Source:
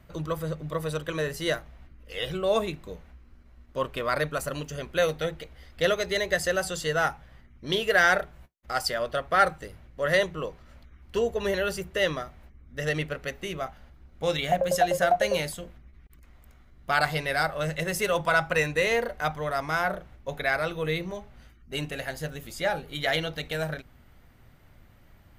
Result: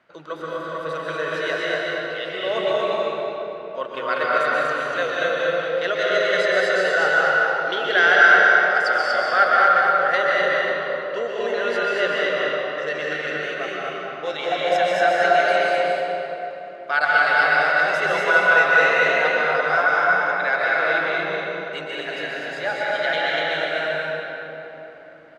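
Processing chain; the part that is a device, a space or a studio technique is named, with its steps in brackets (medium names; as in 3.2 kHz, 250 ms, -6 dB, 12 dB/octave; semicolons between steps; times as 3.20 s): station announcement (band-pass 420–4100 Hz; peaking EQ 1.5 kHz +7 dB 0.22 oct; loudspeakers at several distances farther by 69 m -11 dB, 82 m -3 dB; reverberation RT60 3.7 s, pre-delay 118 ms, DRR -4.5 dB)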